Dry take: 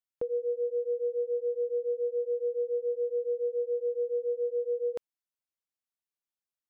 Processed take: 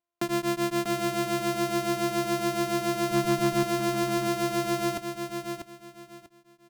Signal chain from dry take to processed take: sample sorter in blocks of 128 samples; 3.11–3.63 low shelf 190 Hz +10.5 dB; added harmonics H 2 -16 dB, 4 -25 dB, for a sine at -21 dBFS; feedback echo 0.643 s, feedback 25%, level -6.5 dB; gain +3 dB

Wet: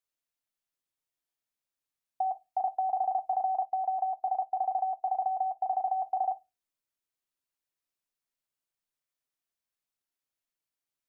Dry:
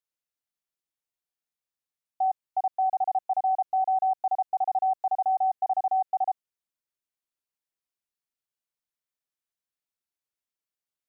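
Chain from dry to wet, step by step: reverb, pre-delay 3 ms, DRR 10 dB; 3.65–5.99 upward expander 1.5:1, over -41 dBFS

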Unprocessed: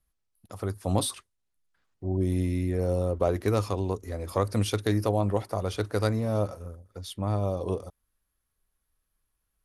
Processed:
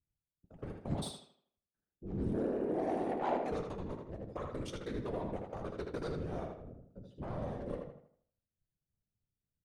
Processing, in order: Wiener smoothing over 41 samples; LPF 8600 Hz 24 dB/oct; comb 6.4 ms, depth 46%; limiter -18 dBFS, peak gain reduction 7.5 dB; resonator 87 Hz, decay 0.22 s, harmonics all, mix 70%; 2.33–3.52 frequency shift +220 Hz; added harmonics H 3 -13 dB, 4 -23 dB, 5 -29 dB, 6 -23 dB, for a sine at -17.5 dBFS; whisperiser; tape echo 79 ms, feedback 41%, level -3.5 dB, low-pass 4300 Hz; gain +1 dB

